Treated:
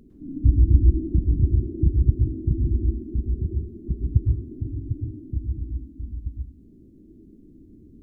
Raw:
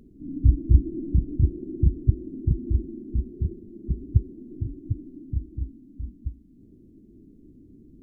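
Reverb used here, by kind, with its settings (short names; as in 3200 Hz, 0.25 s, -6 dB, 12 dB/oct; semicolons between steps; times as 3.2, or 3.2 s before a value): plate-style reverb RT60 0.51 s, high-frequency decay 0.75×, pre-delay 95 ms, DRR 2.5 dB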